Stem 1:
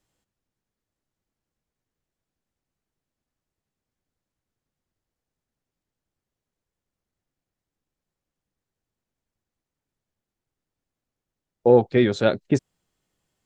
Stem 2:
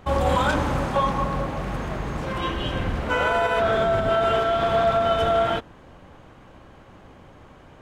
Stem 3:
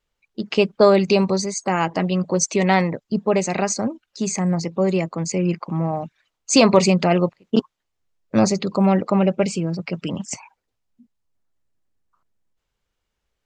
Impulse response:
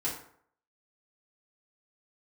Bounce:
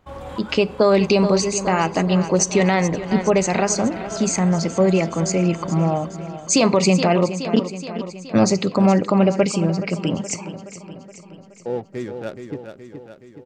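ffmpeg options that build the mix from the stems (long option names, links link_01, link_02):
-filter_complex "[0:a]adynamicsmooth=sensitivity=2:basefreq=650,volume=-11dB,asplit=2[link_01][link_02];[link_02]volume=-7.5dB[link_03];[1:a]volume=-14dB,asplit=3[link_04][link_05][link_06];[link_05]volume=-15dB[link_07];[link_06]volume=-5.5dB[link_08];[2:a]volume=2.5dB,asplit=4[link_09][link_10][link_11][link_12];[link_10]volume=-20dB[link_13];[link_11]volume=-13.5dB[link_14];[link_12]apad=whole_len=344459[link_15];[link_04][link_15]sidechaincompress=threshold=-27dB:ratio=8:attack=6.4:release=323[link_16];[3:a]atrim=start_sample=2205[link_17];[link_07][link_13]amix=inputs=2:normalize=0[link_18];[link_18][link_17]afir=irnorm=-1:irlink=0[link_19];[link_03][link_08][link_14]amix=inputs=3:normalize=0,aecho=0:1:422|844|1266|1688|2110|2532|2954|3376|3798:1|0.58|0.336|0.195|0.113|0.0656|0.0381|0.0221|0.0128[link_20];[link_01][link_16][link_09][link_19][link_20]amix=inputs=5:normalize=0,alimiter=limit=-6dB:level=0:latency=1:release=115"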